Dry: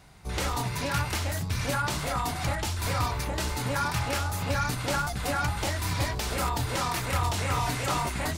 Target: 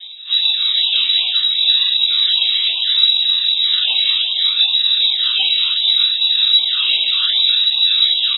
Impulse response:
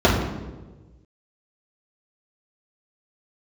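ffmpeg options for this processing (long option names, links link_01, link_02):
-filter_complex "[0:a]highpass=55,equalizer=frequency=2900:width_type=o:width=1.3:gain=13.5,aecho=1:1:4.4:0.5,areverse,acompressor=mode=upward:threshold=-32dB:ratio=2.5,areverse,alimiter=limit=-20dB:level=0:latency=1,flanger=delay=18.5:depth=2.4:speed=2,acrusher=samples=34:mix=1:aa=0.000001:lfo=1:lforange=34:lforate=0.68[link_01];[1:a]atrim=start_sample=2205,afade=type=out:start_time=0.16:duration=0.01,atrim=end_sample=7497,asetrate=83790,aresample=44100[link_02];[link_01][link_02]afir=irnorm=-1:irlink=0,lowpass=frequency=3400:width_type=q:width=0.5098,lowpass=frequency=3400:width_type=q:width=0.6013,lowpass=frequency=3400:width_type=q:width=0.9,lowpass=frequency=3400:width_type=q:width=2.563,afreqshift=-4000,afftfilt=real='re*(1-between(b*sr/1024,620*pow(1600/620,0.5+0.5*sin(2*PI*2.6*pts/sr))/1.41,620*pow(1600/620,0.5+0.5*sin(2*PI*2.6*pts/sr))*1.41))':imag='im*(1-between(b*sr/1024,620*pow(1600/620,0.5+0.5*sin(2*PI*2.6*pts/sr))/1.41,620*pow(1600/620,0.5+0.5*sin(2*PI*2.6*pts/sr))*1.41))':win_size=1024:overlap=0.75,volume=-8dB"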